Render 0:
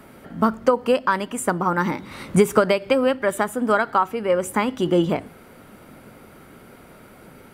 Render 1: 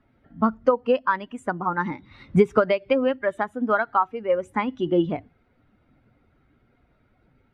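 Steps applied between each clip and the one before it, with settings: per-bin expansion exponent 1.5; LPF 2700 Hz 12 dB/oct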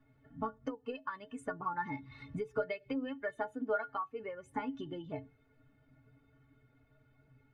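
bell 75 Hz +6 dB 1.3 oct; compressor 5:1, threshold -28 dBFS, peak gain reduction 15.5 dB; metallic resonator 130 Hz, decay 0.22 s, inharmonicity 0.03; gain +4 dB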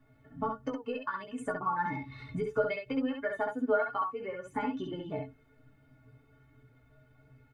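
early reflections 16 ms -6.5 dB, 67 ms -4 dB; gain +3 dB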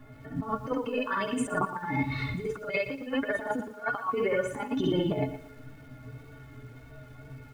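negative-ratio compressor -38 dBFS, ratio -0.5; wow and flutter 28 cents; lo-fi delay 0.117 s, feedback 35%, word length 10-bit, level -12 dB; gain +8.5 dB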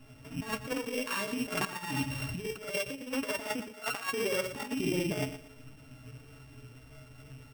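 sample sorter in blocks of 16 samples; gain -4 dB

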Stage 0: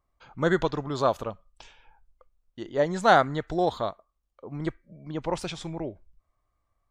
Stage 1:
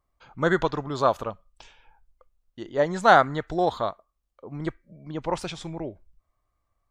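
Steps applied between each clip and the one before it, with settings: dynamic EQ 1200 Hz, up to +4 dB, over -35 dBFS, Q 0.83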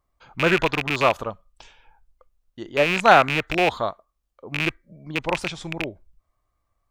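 rattling part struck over -35 dBFS, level -13 dBFS; gain +2 dB

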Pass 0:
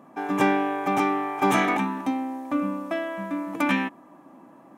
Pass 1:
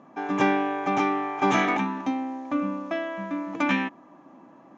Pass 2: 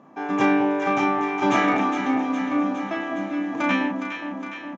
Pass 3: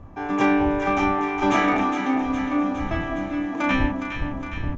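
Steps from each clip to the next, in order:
elliptic low-pass 6700 Hz, stop band 40 dB
doubler 34 ms -5.5 dB; echo with dull and thin repeats by turns 0.206 s, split 970 Hz, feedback 81%, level -5.5 dB
wind noise 100 Hz -33 dBFS

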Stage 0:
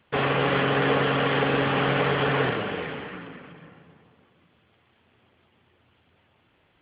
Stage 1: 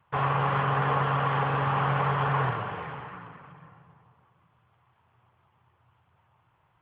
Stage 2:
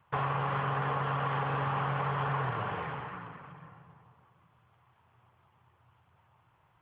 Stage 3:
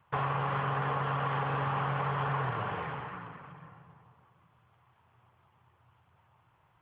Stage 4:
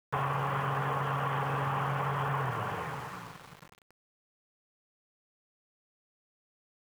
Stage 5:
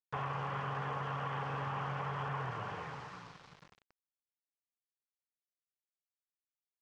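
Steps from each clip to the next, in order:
graphic EQ 125/250/500/1000/2000/4000 Hz +11/-10/-4/+12/-3/-8 dB; gain -6 dB
compressor, threshold -28 dBFS, peak gain reduction 7 dB
nothing audible
sample gate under -46 dBFS
ladder low-pass 6700 Hz, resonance 30%

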